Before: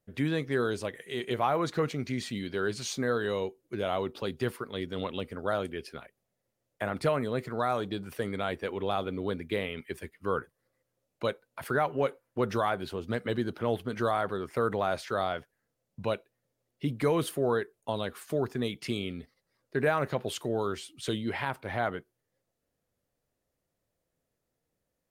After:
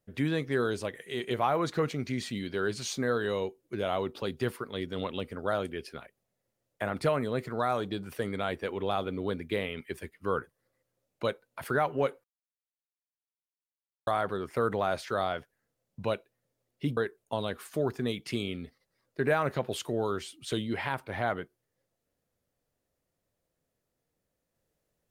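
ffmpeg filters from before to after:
ffmpeg -i in.wav -filter_complex "[0:a]asplit=4[link_01][link_02][link_03][link_04];[link_01]atrim=end=12.24,asetpts=PTS-STARTPTS,afade=type=out:start_time=12.236:duration=0.004:curve=hsin[link_05];[link_02]atrim=start=12.24:end=14.07,asetpts=PTS-STARTPTS,volume=0[link_06];[link_03]atrim=start=14.07:end=16.972,asetpts=PTS-STARTPTS,afade=type=in:duration=0.004:curve=hsin[link_07];[link_04]atrim=start=17.528[link_08];[link_05][link_06][link_07]concat=n=3:v=0:a=1[link_09];[link_09][link_08]acrossfade=duration=0.004:curve1=hsin:curve2=hsin" out.wav

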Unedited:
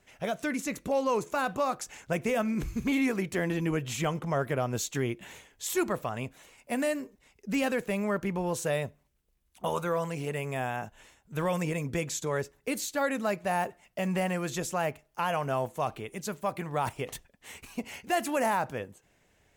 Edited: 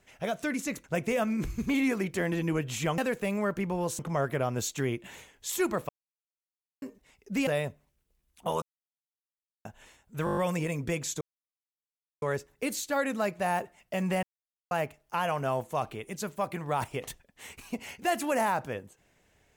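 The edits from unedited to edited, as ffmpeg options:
ffmpeg -i in.wav -filter_complex "[0:a]asplit=18[link_01][link_02][link_03][link_04][link_05][link_06][link_07][link_08][link_09][link_10][link_11][link_12][link_13][link_14][link_15][link_16][link_17][link_18];[link_01]atrim=end=0.842[link_19];[link_02]atrim=start=2.018:end=4.162[link_20];[link_03]atrim=start=7.638:end=8.652[link_21];[link_04]atrim=start=4.158:end=6.06,asetpts=PTS-STARTPTS,afade=type=out:start_time=1.898:duration=0.004:curve=hsin[link_22];[link_05]atrim=start=6.06:end=6.99,asetpts=PTS-STARTPTS,volume=0[link_23];[link_06]atrim=start=6.99:end=7.642,asetpts=PTS-STARTPTS,afade=type=in:duration=0.004:curve=hsin[link_24];[link_07]atrim=start=8.648:end=9.8,asetpts=PTS-STARTPTS,afade=type=out:start_time=1.148:duration=0.004:curve=hsin[link_25];[link_08]atrim=start=9.8:end=10.83,asetpts=PTS-STARTPTS,volume=0[link_26];[link_09]atrim=start=10.83:end=11.452,asetpts=PTS-STARTPTS,afade=type=in:duration=0.004:curve=hsin[link_27];[link_10]atrim=start=11.428:end=11.452[link_28];[link_11]atrim=start=11.428:end=11.452[link_29];[link_12]atrim=start=11.428:end=11.452[link_30];[link_13]atrim=start=11.428:end=11.452[link_31];[link_14]atrim=start=11.428:end=11.452[link_32];[link_15]atrim=start=11.428:end=12.27,asetpts=PTS-STARTPTS,afade=type=out:start_time=0.838:duration=0.004:curve=hsin,apad=pad_dur=1.01[link_33];[link_16]atrim=start=12.27:end=14.28,asetpts=PTS-STARTPTS,afade=type=in:duration=0.004:curve=hsin,afade=type=out:start_time=2.006:duration=0.004:curve=hsin[link_34];[link_17]atrim=start=14.28:end=14.76,asetpts=PTS-STARTPTS,volume=0[link_35];[link_18]atrim=start=14.76,asetpts=PTS-STARTPTS,afade=type=in:duration=0.004:curve=hsin[link_36];[link_19][link_20]acrossfade=duration=0.004:curve1=hsin:curve2=hsin[link_37];[link_37][link_21]acrossfade=duration=0.004:curve1=hsin:curve2=hsin[link_38];[link_22][link_23][link_24]concat=n=3:v=0:a=1[link_39];[link_38][link_39]acrossfade=duration=0.004:curve1=hsin:curve2=hsin[link_40];[link_25][link_26][link_27]concat=n=3:v=0:a=1[link_41];[link_40][link_41]acrossfade=duration=0.004:curve1=hsin:curve2=hsin[link_42];[link_42][link_28]acrossfade=duration=0.004:curve1=hsin:curve2=hsin[link_43];[link_43][link_29]acrossfade=duration=0.004:curve1=hsin:curve2=hsin[link_44];[link_44][link_30]acrossfade=duration=0.004:curve1=hsin:curve2=hsin[link_45];[link_45][link_31]acrossfade=duration=0.004:curve1=hsin:curve2=hsin[link_46];[link_46][link_32]acrossfade=duration=0.004:curve1=hsin:curve2=hsin[link_47];[link_33][link_34][link_35][link_36]concat=n=4:v=0:a=1[link_48];[link_47][link_48]acrossfade=duration=0.004:curve1=hsin:curve2=hsin" out.wav

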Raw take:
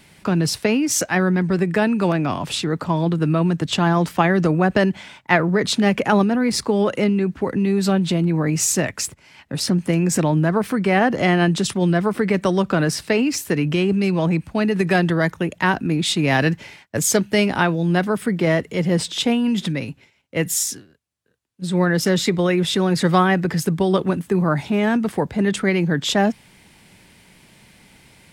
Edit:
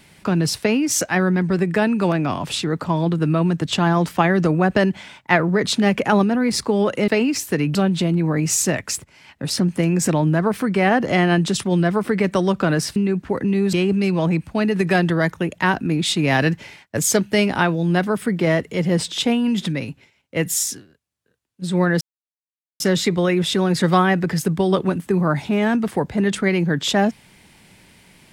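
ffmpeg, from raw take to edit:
ffmpeg -i in.wav -filter_complex "[0:a]asplit=6[link_01][link_02][link_03][link_04][link_05][link_06];[link_01]atrim=end=7.082[link_07];[link_02]atrim=start=13.058:end=13.732[link_08];[link_03]atrim=start=7.848:end=13.062[link_09];[link_04]atrim=start=7.078:end=7.852[link_10];[link_05]atrim=start=13.728:end=22.01,asetpts=PTS-STARTPTS,afade=type=out:start_time=8.278:duration=0.004:curve=hsin,apad=pad_dur=0.79[link_11];[link_06]atrim=start=22.01,asetpts=PTS-STARTPTS,afade=type=in:duration=0.004:curve=hsin[link_12];[link_07][link_08]acrossfade=duration=0.004:curve1=hsin:curve2=hsin[link_13];[link_13][link_09]acrossfade=duration=0.004:curve1=hsin:curve2=hsin[link_14];[link_14][link_10]acrossfade=duration=0.004:curve1=hsin:curve2=hsin[link_15];[link_11][link_12]concat=n=2:v=0:a=1[link_16];[link_15][link_16]acrossfade=duration=0.004:curve1=hsin:curve2=hsin" out.wav

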